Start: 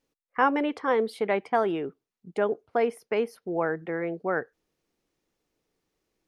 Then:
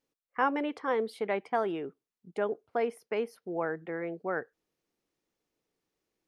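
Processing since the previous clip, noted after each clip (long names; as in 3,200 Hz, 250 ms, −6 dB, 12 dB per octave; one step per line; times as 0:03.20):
low-shelf EQ 73 Hz −8 dB
level −5 dB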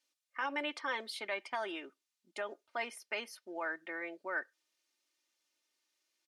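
comb filter 3.3 ms, depth 71%
brickwall limiter −22 dBFS, peak gain reduction 7.5 dB
resonant band-pass 5,100 Hz, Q 0.61
level +6.5 dB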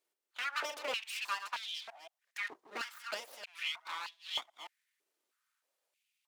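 delay that plays each chunk backwards 173 ms, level −9 dB
full-wave rectification
high-pass on a step sequencer 3.2 Hz 390–3,500 Hz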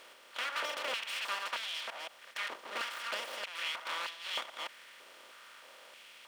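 compressor on every frequency bin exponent 0.4
level −4.5 dB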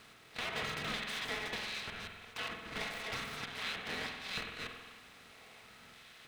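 ring modulation 740 Hz
convolution reverb RT60 1.3 s, pre-delay 47 ms, DRR 3.5 dB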